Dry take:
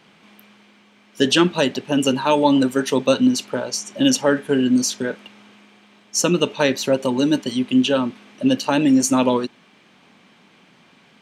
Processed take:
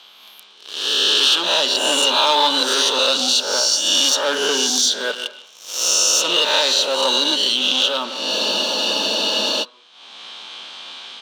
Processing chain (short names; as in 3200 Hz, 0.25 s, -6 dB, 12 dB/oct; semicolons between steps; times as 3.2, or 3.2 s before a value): spectral swells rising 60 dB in 1.07 s; LPF 10000 Hz 12 dB/oct; sample leveller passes 3; HPF 430 Hz 12 dB/oct; resonant high shelf 2700 Hz +9.5 dB, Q 3; compressor 4:1, threshold -7 dBFS, peak gain reduction 12.5 dB; bell 1400 Hz +12.5 dB 2.6 oct; AGC gain up to 11 dB; reverb RT60 0.55 s, pre-delay 0.115 s, DRR 12 dB; spectral freeze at 8.33, 1.29 s; gain -2.5 dB